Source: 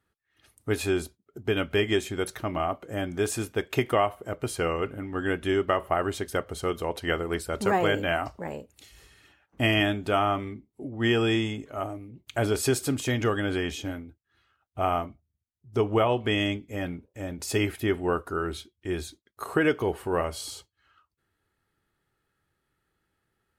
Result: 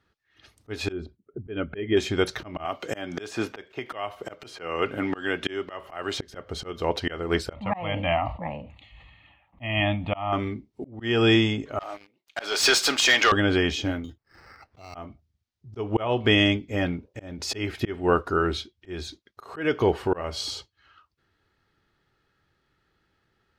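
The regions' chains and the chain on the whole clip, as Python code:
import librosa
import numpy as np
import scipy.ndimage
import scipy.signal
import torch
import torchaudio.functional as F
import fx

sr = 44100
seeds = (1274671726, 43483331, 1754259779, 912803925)

y = fx.chain(x, sr, fx.envelope_sharpen(power=1.5),
    fx.lowpass(hz=2600.0, slope=12), at=(0.92, 1.97))
y = fx.chain(y, sr, fx.highpass(hz=130.0, slope=6),
    fx.low_shelf(hz=320.0, db=-7.0),
    fx.band_squash(depth_pct=100), at=(2.65, 6.19))
y = fx.chain(y, sr, fx.lowpass(hz=2600.0, slope=12),
    fx.fixed_phaser(hz=1500.0, stages=6),
    fx.sustainer(db_per_s=80.0), at=(7.53, 10.33))
y = fx.chain(y, sr, fx.highpass(hz=910.0, slope=12),
    fx.leveller(passes=3), at=(11.79, 13.32))
y = fx.chain(y, sr, fx.high_shelf(hz=5100.0, db=-9.5),
    fx.sample_hold(seeds[0], rate_hz=3400.0, jitter_pct=0),
    fx.band_squash(depth_pct=100), at=(14.04, 14.95))
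y = fx.high_shelf_res(y, sr, hz=7100.0, db=-12.0, q=1.5)
y = fx.auto_swell(y, sr, attack_ms=281.0)
y = F.gain(torch.from_numpy(y), 6.0).numpy()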